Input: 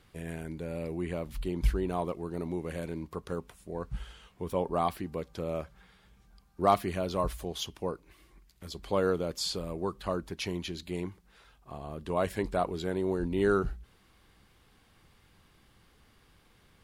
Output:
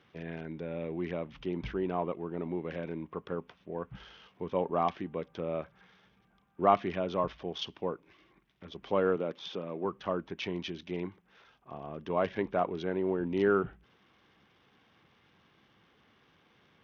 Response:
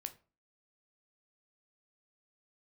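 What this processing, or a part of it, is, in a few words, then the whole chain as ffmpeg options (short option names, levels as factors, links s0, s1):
Bluetooth headset: -filter_complex "[0:a]asettb=1/sr,asplit=3[s0][s1][s2];[s0]atrim=end=9.164[s3];[s1]atrim=start=9.16:end=9.85,asetpts=PTS-STARTPTS,afade=t=in:d=0.004:c=qsin,afade=t=out:st=0.686:d=0.004:c=qsin,highpass=160[s4];[s2]atrim=start=9.846[s5];[s3][s4]acrossfade=d=0.004:c1=hsin:c2=qsin[s6];[s6][s5]acrossfade=d=0.004:c1=qsin:c2=hsin,highpass=150,aresample=8000,aresample=44100" -ar 48000 -c:a sbc -b:a 64k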